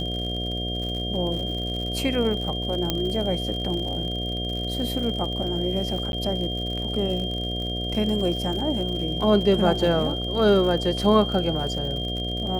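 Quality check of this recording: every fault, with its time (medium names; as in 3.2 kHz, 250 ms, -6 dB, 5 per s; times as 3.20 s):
buzz 60 Hz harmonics 12 -30 dBFS
crackle 81 per s -31 dBFS
whine 3.2 kHz -30 dBFS
2.90 s: pop -8 dBFS
6.12–6.13 s: dropout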